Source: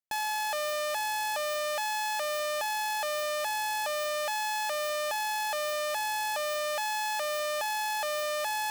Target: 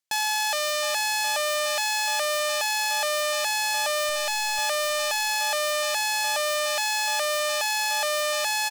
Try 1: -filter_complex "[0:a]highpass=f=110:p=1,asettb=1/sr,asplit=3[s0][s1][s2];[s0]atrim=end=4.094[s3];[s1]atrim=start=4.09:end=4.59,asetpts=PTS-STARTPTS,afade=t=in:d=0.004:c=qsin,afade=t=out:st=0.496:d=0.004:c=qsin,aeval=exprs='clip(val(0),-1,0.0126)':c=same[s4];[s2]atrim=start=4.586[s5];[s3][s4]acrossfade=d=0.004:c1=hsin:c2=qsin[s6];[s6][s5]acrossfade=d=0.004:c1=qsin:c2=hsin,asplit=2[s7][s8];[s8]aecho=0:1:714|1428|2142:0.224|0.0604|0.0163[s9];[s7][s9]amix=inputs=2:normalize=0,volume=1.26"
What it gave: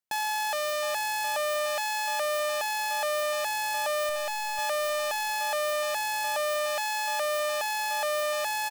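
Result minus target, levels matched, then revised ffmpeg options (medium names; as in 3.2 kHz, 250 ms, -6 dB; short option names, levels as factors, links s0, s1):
4 kHz band -4.0 dB
-filter_complex "[0:a]highpass=f=110:p=1,equalizer=f=5400:w=0.39:g=9,asettb=1/sr,asplit=3[s0][s1][s2];[s0]atrim=end=4.094[s3];[s1]atrim=start=4.09:end=4.59,asetpts=PTS-STARTPTS,afade=t=in:d=0.004:c=qsin,afade=t=out:st=0.496:d=0.004:c=qsin,aeval=exprs='clip(val(0),-1,0.0126)':c=same[s4];[s2]atrim=start=4.586[s5];[s3][s4]acrossfade=d=0.004:c1=hsin:c2=qsin[s6];[s6][s5]acrossfade=d=0.004:c1=qsin:c2=hsin,asplit=2[s7][s8];[s8]aecho=0:1:714|1428|2142:0.224|0.0604|0.0163[s9];[s7][s9]amix=inputs=2:normalize=0,volume=1.26"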